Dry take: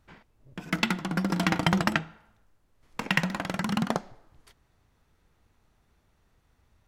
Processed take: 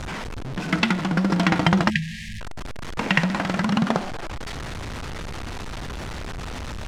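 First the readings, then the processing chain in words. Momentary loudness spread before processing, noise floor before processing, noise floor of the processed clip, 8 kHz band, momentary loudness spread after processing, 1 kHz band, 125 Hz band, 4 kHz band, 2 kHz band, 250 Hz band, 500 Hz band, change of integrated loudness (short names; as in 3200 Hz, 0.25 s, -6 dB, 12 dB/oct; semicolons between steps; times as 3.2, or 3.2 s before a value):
16 LU, -69 dBFS, -33 dBFS, +4.0 dB, 14 LU, +6.0 dB, +7.5 dB, +5.0 dB, +5.5 dB, +7.0 dB, +7.0 dB, +3.0 dB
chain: zero-crossing step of -30 dBFS; air absorption 68 m; spectral delete 1.9–2.41, 230–1600 Hz; gain +4.5 dB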